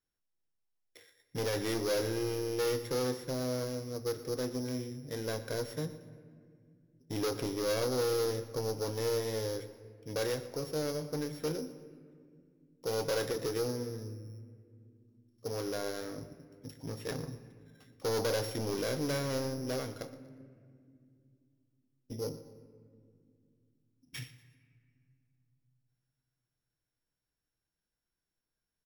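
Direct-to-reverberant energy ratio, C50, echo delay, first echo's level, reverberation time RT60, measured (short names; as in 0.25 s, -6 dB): 10.0 dB, 12.5 dB, 0.119 s, -17.5 dB, 2.2 s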